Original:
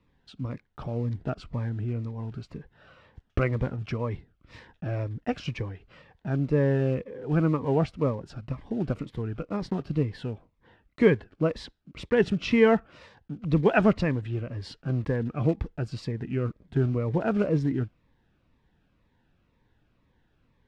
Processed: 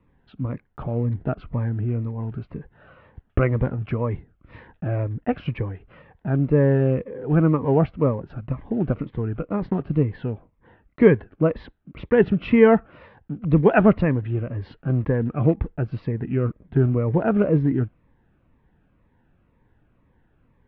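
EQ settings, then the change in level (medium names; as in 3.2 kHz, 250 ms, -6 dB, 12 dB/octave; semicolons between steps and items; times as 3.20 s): Bessel low-pass 2.1 kHz, order 4; distance through air 130 m; +6.0 dB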